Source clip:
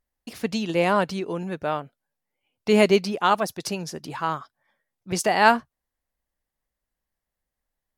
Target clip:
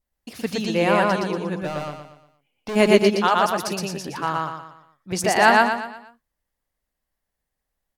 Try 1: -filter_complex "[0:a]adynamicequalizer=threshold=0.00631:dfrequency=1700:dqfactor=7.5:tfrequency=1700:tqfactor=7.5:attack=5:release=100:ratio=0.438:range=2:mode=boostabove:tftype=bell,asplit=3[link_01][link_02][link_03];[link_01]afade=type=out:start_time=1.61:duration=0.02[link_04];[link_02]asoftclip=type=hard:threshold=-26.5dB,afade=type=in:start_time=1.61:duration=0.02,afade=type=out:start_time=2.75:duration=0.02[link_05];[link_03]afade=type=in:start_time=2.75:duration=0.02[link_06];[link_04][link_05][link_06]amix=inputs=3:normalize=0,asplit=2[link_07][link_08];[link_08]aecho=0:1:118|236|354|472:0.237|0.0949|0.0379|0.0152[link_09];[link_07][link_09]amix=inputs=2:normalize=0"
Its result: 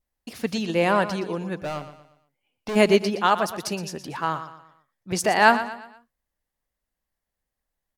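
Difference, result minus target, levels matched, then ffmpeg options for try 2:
echo-to-direct −11.5 dB
-filter_complex "[0:a]adynamicequalizer=threshold=0.00631:dfrequency=1700:dqfactor=7.5:tfrequency=1700:tqfactor=7.5:attack=5:release=100:ratio=0.438:range=2:mode=boostabove:tftype=bell,asplit=3[link_01][link_02][link_03];[link_01]afade=type=out:start_time=1.61:duration=0.02[link_04];[link_02]asoftclip=type=hard:threshold=-26.5dB,afade=type=in:start_time=1.61:duration=0.02,afade=type=out:start_time=2.75:duration=0.02[link_05];[link_03]afade=type=in:start_time=2.75:duration=0.02[link_06];[link_04][link_05][link_06]amix=inputs=3:normalize=0,asplit=2[link_07][link_08];[link_08]aecho=0:1:118|236|354|472|590:0.891|0.357|0.143|0.057|0.0228[link_09];[link_07][link_09]amix=inputs=2:normalize=0"

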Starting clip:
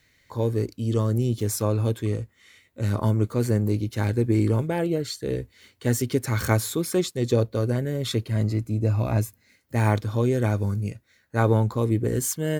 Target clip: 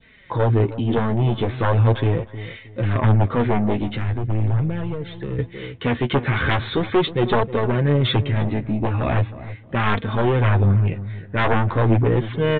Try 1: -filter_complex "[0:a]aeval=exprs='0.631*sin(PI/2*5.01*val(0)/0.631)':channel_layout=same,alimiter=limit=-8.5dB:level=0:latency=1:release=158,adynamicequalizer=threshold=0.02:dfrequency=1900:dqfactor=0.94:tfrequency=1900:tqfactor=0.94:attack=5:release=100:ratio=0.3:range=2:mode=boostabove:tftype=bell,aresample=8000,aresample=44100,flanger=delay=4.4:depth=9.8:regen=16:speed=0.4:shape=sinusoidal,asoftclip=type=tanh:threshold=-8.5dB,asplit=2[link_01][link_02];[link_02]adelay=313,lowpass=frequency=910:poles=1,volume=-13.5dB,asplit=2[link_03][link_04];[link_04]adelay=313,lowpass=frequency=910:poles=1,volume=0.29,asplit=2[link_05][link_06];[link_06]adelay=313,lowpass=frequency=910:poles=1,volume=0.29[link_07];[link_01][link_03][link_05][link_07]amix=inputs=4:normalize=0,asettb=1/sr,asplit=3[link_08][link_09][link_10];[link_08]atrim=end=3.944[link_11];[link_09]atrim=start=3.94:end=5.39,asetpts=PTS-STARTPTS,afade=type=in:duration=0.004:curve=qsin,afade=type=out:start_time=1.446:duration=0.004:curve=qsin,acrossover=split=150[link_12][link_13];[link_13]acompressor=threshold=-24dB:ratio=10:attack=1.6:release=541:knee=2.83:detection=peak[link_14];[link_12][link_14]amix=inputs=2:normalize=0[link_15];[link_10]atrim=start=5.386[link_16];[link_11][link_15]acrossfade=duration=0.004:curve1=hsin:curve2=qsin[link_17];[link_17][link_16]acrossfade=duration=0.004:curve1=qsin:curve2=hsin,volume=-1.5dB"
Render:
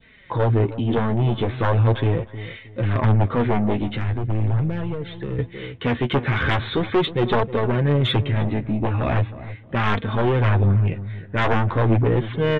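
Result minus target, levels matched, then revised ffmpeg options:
soft clipping: distortion +15 dB
-filter_complex "[0:a]aeval=exprs='0.631*sin(PI/2*5.01*val(0)/0.631)':channel_layout=same,alimiter=limit=-8.5dB:level=0:latency=1:release=158,adynamicequalizer=threshold=0.02:dfrequency=1900:dqfactor=0.94:tfrequency=1900:tqfactor=0.94:attack=5:release=100:ratio=0.3:range=2:mode=boostabove:tftype=bell,aresample=8000,aresample=44100,flanger=delay=4.4:depth=9.8:regen=16:speed=0.4:shape=sinusoidal,asoftclip=type=tanh:threshold=-0.5dB,asplit=2[link_01][link_02];[link_02]adelay=313,lowpass=frequency=910:poles=1,volume=-13.5dB,asplit=2[link_03][link_04];[link_04]adelay=313,lowpass=frequency=910:poles=1,volume=0.29,asplit=2[link_05][link_06];[link_06]adelay=313,lowpass=frequency=910:poles=1,volume=0.29[link_07];[link_01][link_03][link_05][link_07]amix=inputs=4:normalize=0,asettb=1/sr,asplit=3[link_08][link_09][link_10];[link_08]atrim=end=3.944[link_11];[link_09]atrim=start=3.94:end=5.39,asetpts=PTS-STARTPTS,afade=type=in:duration=0.004:curve=qsin,afade=type=out:start_time=1.446:duration=0.004:curve=qsin,acrossover=split=150[link_12][link_13];[link_13]acompressor=threshold=-24dB:ratio=10:attack=1.6:release=541:knee=2.83:detection=peak[link_14];[link_12][link_14]amix=inputs=2:normalize=0[link_15];[link_10]atrim=start=5.386[link_16];[link_11][link_15]acrossfade=duration=0.004:curve1=hsin:curve2=qsin[link_17];[link_17][link_16]acrossfade=duration=0.004:curve1=qsin:curve2=hsin,volume=-1.5dB"

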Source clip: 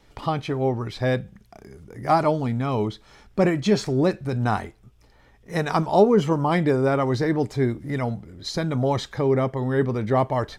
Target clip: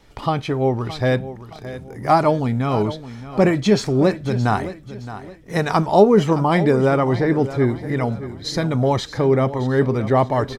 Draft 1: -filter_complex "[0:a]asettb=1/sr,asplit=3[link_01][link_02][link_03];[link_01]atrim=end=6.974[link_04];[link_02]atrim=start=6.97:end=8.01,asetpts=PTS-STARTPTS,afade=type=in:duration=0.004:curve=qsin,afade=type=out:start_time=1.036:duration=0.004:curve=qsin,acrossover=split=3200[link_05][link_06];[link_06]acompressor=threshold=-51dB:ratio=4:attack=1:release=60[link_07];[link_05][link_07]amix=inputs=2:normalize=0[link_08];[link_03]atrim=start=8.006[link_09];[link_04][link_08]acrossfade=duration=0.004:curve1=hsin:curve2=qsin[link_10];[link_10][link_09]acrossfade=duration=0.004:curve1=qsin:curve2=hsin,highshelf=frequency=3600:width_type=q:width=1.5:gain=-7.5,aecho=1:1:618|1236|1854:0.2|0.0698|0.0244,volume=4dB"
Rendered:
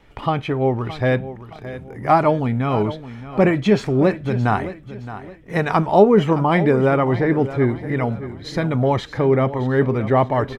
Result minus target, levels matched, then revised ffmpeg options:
8,000 Hz band −9.0 dB
-filter_complex "[0:a]asettb=1/sr,asplit=3[link_01][link_02][link_03];[link_01]atrim=end=6.974[link_04];[link_02]atrim=start=6.97:end=8.01,asetpts=PTS-STARTPTS,afade=type=in:duration=0.004:curve=qsin,afade=type=out:start_time=1.036:duration=0.004:curve=qsin,acrossover=split=3200[link_05][link_06];[link_06]acompressor=threshold=-51dB:ratio=4:attack=1:release=60[link_07];[link_05][link_07]amix=inputs=2:normalize=0[link_08];[link_03]atrim=start=8.006[link_09];[link_04][link_08]acrossfade=duration=0.004:curve1=hsin:curve2=qsin[link_10];[link_10][link_09]acrossfade=duration=0.004:curve1=qsin:curve2=hsin,aecho=1:1:618|1236|1854:0.2|0.0698|0.0244,volume=4dB"

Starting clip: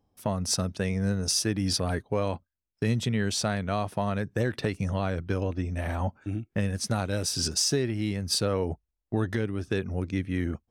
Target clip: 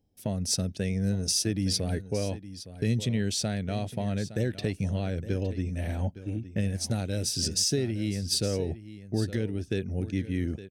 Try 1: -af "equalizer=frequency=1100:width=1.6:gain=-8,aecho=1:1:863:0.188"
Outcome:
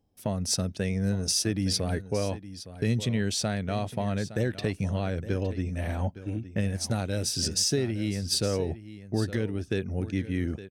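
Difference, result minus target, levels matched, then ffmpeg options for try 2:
1,000 Hz band +4.5 dB
-af "equalizer=frequency=1100:width=1.6:gain=-18,aecho=1:1:863:0.188"

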